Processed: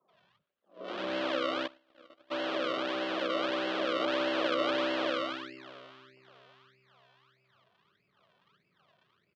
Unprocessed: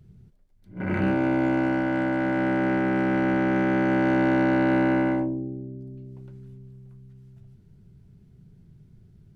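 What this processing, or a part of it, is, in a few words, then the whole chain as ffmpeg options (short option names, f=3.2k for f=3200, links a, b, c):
circuit-bent sampling toy: -filter_complex "[0:a]acrusher=samples=36:mix=1:aa=0.000001:lfo=1:lforange=36:lforate=1.6,highpass=490,equalizer=f=570:t=q:w=4:g=6,equalizer=f=820:t=q:w=4:g=-5,equalizer=f=1.2k:t=q:w=4:g=5,equalizer=f=2.1k:t=q:w=4:g=-4,equalizer=f=3.2k:t=q:w=4:g=5,lowpass=f=4k:w=0.5412,lowpass=f=4k:w=1.3066,acrossover=split=200|920[a][b][c];[c]adelay=80[d];[a]adelay=130[e];[e][b][d]amix=inputs=3:normalize=0,asplit=3[f][g][h];[f]afade=t=out:st=1.66:d=0.02[i];[g]agate=range=-38dB:threshold=-24dB:ratio=16:detection=peak,afade=t=in:st=1.66:d=0.02,afade=t=out:st=2.3:d=0.02[j];[h]afade=t=in:st=2.3:d=0.02[k];[i][j][k]amix=inputs=3:normalize=0,volume=-4.5dB"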